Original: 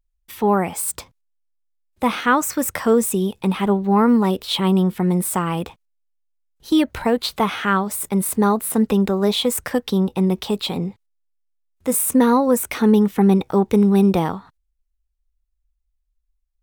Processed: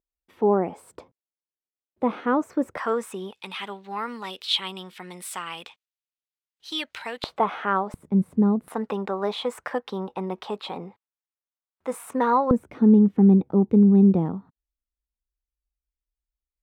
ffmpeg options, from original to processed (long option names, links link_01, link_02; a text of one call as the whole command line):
ffmpeg -i in.wav -af "asetnsamples=nb_out_samples=441:pad=0,asendcmd='2.77 bandpass f 1300;3.33 bandpass f 3200;7.24 bandpass f 700;7.94 bandpass f 180;8.68 bandpass f 1000;12.51 bandpass f 210',bandpass=frequency=400:width_type=q:width=1.1:csg=0" out.wav